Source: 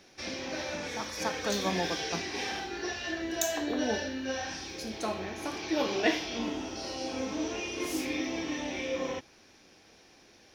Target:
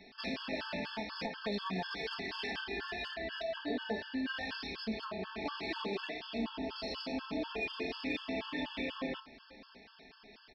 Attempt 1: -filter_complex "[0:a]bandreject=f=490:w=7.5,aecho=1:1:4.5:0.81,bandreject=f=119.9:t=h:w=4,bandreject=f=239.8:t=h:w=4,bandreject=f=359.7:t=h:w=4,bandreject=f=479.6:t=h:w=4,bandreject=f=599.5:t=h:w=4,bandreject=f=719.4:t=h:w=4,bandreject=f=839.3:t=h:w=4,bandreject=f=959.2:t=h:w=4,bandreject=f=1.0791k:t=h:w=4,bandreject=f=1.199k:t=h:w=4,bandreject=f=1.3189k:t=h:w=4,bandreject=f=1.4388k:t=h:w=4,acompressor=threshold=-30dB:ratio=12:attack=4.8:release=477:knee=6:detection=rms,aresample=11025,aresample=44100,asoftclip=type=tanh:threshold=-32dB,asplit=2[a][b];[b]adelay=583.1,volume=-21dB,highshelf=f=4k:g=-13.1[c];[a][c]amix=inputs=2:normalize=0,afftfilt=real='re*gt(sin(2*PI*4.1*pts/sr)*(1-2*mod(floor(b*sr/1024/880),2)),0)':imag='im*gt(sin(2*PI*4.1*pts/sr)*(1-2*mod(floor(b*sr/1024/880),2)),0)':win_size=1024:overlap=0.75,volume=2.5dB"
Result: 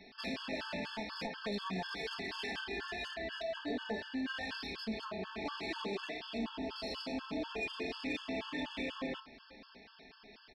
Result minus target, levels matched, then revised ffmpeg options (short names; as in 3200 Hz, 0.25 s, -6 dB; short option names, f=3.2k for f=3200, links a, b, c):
soft clip: distortion +10 dB
-filter_complex "[0:a]bandreject=f=490:w=7.5,aecho=1:1:4.5:0.81,bandreject=f=119.9:t=h:w=4,bandreject=f=239.8:t=h:w=4,bandreject=f=359.7:t=h:w=4,bandreject=f=479.6:t=h:w=4,bandreject=f=599.5:t=h:w=4,bandreject=f=719.4:t=h:w=4,bandreject=f=839.3:t=h:w=4,bandreject=f=959.2:t=h:w=4,bandreject=f=1.0791k:t=h:w=4,bandreject=f=1.199k:t=h:w=4,bandreject=f=1.3189k:t=h:w=4,bandreject=f=1.4388k:t=h:w=4,acompressor=threshold=-30dB:ratio=12:attack=4.8:release=477:knee=6:detection=rms,aresample=11025,aresample=44100,asoftclip=type=tanh:threshold=-25dB,asplit=2[a][b];[b]adelay=583.1,volume=-21dB,highshelf=f=4k:g=-13.1[c];[a][c]amix=inputs=2:normalize=0,afftfilt=real='re*gt(sin(2*PI*4.1*pts/sr)*(1-2*mod(floor(b*sr/1024/880),2)),0)':imag='im*gt(sin(2*PI*4.1*pts/sr)*(1-2*mod(floor(b*sr/1024/880),2)),0)':win_size=1024:overlap=0.75,volume=2.5dB"